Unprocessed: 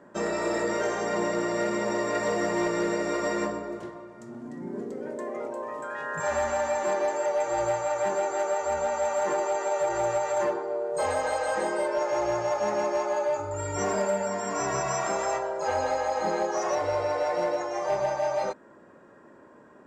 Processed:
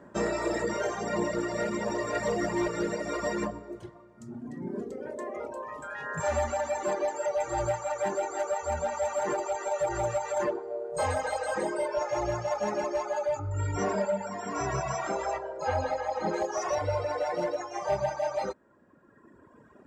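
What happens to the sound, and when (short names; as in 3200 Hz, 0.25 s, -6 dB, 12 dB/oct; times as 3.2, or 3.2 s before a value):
13.39–16.34 air absorption 81 m
whole clip: reverb removal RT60 1.9 s; bell 67 Hz +11.5 dB 2 oct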